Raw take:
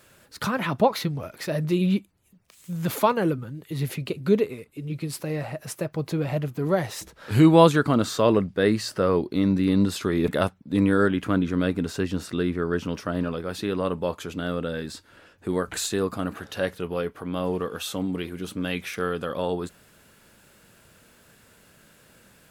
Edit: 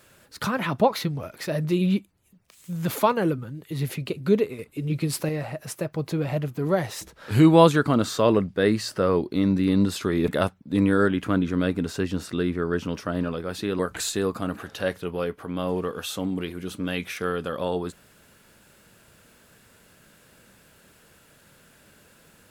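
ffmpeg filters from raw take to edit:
ffmpeg -i in.wav -filter_complex "[0:a]asplit=4[link_01][link_02][link_03][link_04];[link_01]atrim=end=4.592[link_05];[link_02]atrim=start=4.588:end=5.292,asetpts=PTS-STARTPTS,volume=5dB[link_06];[link_03]atrim=start=5.288:end=13.792[link_07];[link_04]atrim=start=15.558[link_08];[link_05][link_06]acrossfade=duration=0.004:curve1=hsin:curve2=hsin[link_09];[link_09][link_07]acrossfade=duration=0.004:curve1=hsin:curve2=hsin[link_10];[link_10][link_08]acrossfade=duration=0.004:curve1=hsin:curve2=hsin" out.wav

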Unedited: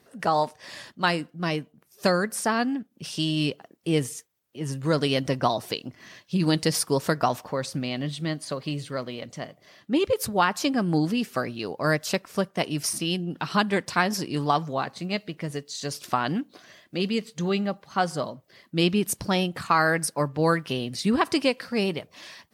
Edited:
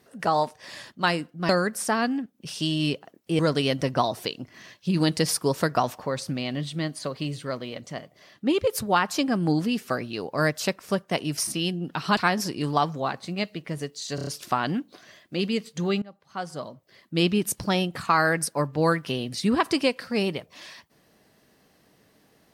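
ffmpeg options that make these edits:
ffmpeg -i in.wav -filter_complex "[0:a]asplit=9[link_01][link_02][link_03][link_04][link_05][link_06][link_07][link_08][link_09];[link_01]atrim=end=1.492[link_10];[link_02]atrim=start=2.058:end=3.962[link_11];[link_03]atrim=start=4.848:end=13.632[link_12];[link_04]atrim=start=13.898:end=15.912[link_13];[link_05]atrim=start=15.878:end=15.912[link_14];[link_06]atrim=start=15.878:end=15.912[link_15];[link_07]atrim=start=15.878:end=15.912[link_16];[link_08]atrim=start=15.878:end=17.63,asetpts=PTS-STARTPTS,afade=type=out:start_time=1.748:duration=0.004:curve=hsin:silence=0.0891251[link_17];[link_09]atrim=start=17.63,asetpts=PTS-STARTPTS,afade=type=in:duration=1.22:silence=0.0891251[link_18];[link_10][link_11]acrossfade=duration=0.004:curve1=hsin:curve2=hsin[link_19];[link_19][link_12]acrossfade=duration=0.004:curve1=hsin:curve2=hsin[link_20];[link_20][link_13]acrossfade=duration=0.004:curve1=hsin:curve2=hsin[link_21];[link_21][link_14]acrossfade=duration=0.004:curve1=hsin:curve2=hsin[link_22];[link_22][link_15]acrossfade=duration=0.004:curve1=hsin:curve2=hsin[link_23];[link_23][link_16]acrossfade=duration=0.004:curve1=hsin:curve2=hsin[link_24];[link_17][link_18]concat=n=2:v=0:a=1[link_25];[link_24][link_25]acrossfade=duration=0.004:curve1=hsin:curve2=hsin" out.wav

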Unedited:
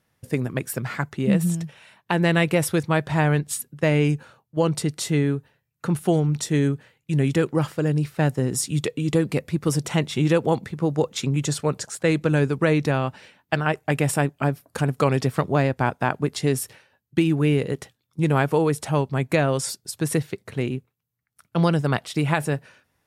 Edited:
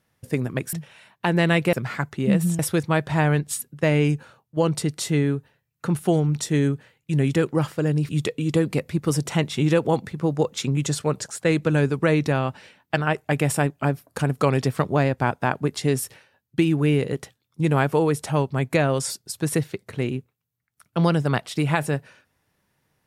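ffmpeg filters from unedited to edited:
ffmpeg -i in.wav -filter_complex "[0:a]asplit=5[link_01][link_02][link_03][link_04][link_05];[link_01]atrim=end=0.732[link_06];[link_02]atrim=start=1.588:end=2.592[link_07];[link_03]atrim=start=0.728:end=1.592[link_08];[link_04]atrim=start=2.588:end=8.092[link_09];[link_05]atrim=start=8.678[link_10];[link_06][link_07]acrossfade=duration=0.004:curve1=hsin:curve2=hsin[link_11];[link_11][link_08]acrossfade=duration=0.004:curve1=hsin:curve2=hsin[link_12];[link_12][link_09]acrossfade=duration=0.004:curve1=hsin:curve2=hsin[link_13];[link_13][link_10]acrossfade=duration=0.004:curve1=hsin:curve2=hsin" out.wav

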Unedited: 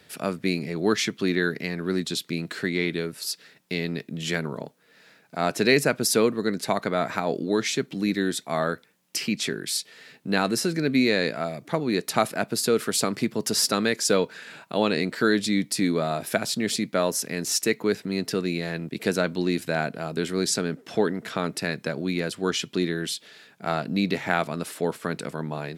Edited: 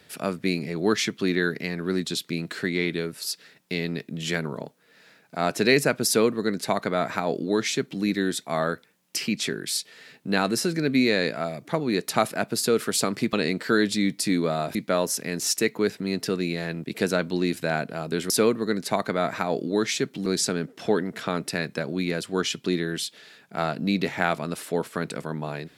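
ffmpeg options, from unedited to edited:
ffmpeg -i in.wav -filter_complex "[0:a]asplit=5[link_01][link_02][link_03][link_04][link_05];[link_01]atrim=end=13.332[link_06];[link_02]atrim=start=14.848:end=16.272[link_07];[link_03]atrim=start=16.798:end=20.352[link_08];[link_04]atrim=start=6.068:end=8.032[link_09];[link_05]atrim=start=20.348[link_10];[link_06][link_07]acrossfade=duration=0.004:curve1=hsin:curve2=hsin[link_11];[link_11][link_08]acrossfade=duration=0.004:curve1=hsin:curve2=hsin[link_12];[link_12][link_09]acrossfade=duration=0.004:curve1=hsin:curve2=hsin[link_13];[link_13][link_10]acrossfade=duration=0.004:curve1=hsin:curve2=hsin" out.wav

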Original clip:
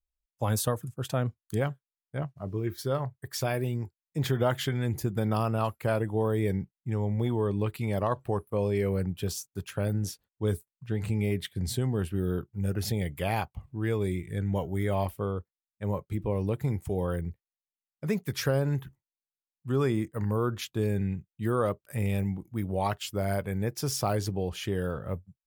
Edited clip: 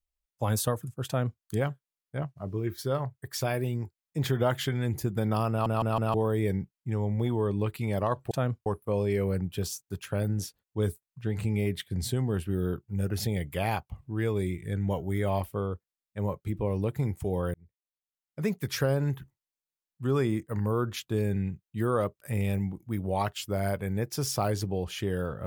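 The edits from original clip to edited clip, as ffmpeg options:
ffmpeg -i in.wav -filter_complex "[0:a]asplit=8[link_01][link_02][link_03][link_04][link_05][link_06][link_07][link_08];[link_01]atrim=end=5.662[link_09];[link_02]atrim=start=5.498:end=5.662[link_10];[link_03]atrim=start=5.498:end=5.662[link_11];[link_04]atrim=start=5.498:end=5.662[link_12];[link_05]atrim=start=6.138:end=8.312[link_13];[link_06]atrim=start=1.068:end=1.422[link_14];[link_07]atrim=start=8.308:end=17.19,asetpts=PTS-STARTPTS,afade=type=out:start_time=8.878:duration=0.004:curve=hsin[link_15];[link_08]atrim=start=17.19,asetpts=PTS-STARTPTS,afade=type=in:duration=0.94[link_16];[link_09][link_10]acrossfade=duration=0.004:curve1=hsin:curve2=hsin[link_17];[link_17][link_11]acrossfade=duration=0.004:curve1=hsin:curve2=hsin[link_18];[link_18][link_12]acrossfade=duration=0.004:curve1=hsin:curve2=hsin[link_19];[link_19][link_13]acrossfade=duration=0.004:curve1=hsin:curve2=hsin[link_20];[link_20][link_14]acrossfade=duration=0.004:curve1=hsin:curve2=hsin[link_21];[link_15][link_16]concat=n=2:v=0:a=1[link_22];[link_21][link_22]acrossfade=duration=0.004:curve1=hsin:curve2=hsin" out.wav

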